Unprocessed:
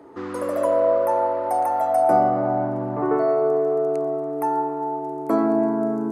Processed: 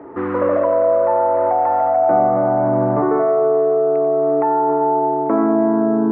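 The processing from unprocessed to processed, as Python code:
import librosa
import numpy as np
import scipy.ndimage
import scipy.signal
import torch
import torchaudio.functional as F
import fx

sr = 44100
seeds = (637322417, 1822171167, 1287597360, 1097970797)

p1 = scipy.signal.sosfilt(scipy.signal.butter(4, 2200.0, 'lowpass', fs=sr, output='sos'), x)
p2 = fx.echo_feedback(p1, sr, ms=91, feedback_pct=51, wet_db=-13.0)
p3 = fx.over_compress(p2, sr, threshold_db=-25.0, ratio=-1.0)
y = p2 + (p3 * 10.0 ** (1.0 / 20.0))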